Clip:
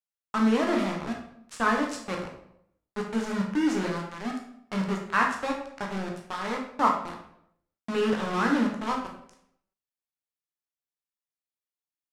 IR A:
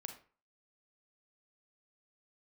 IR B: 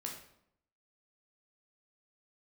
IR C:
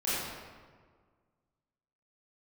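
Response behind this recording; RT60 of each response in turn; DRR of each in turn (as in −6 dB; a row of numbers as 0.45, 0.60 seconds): B; 0.40, 0.70, 1.7 seconds; 5.5, −0.5, −11.5 decibels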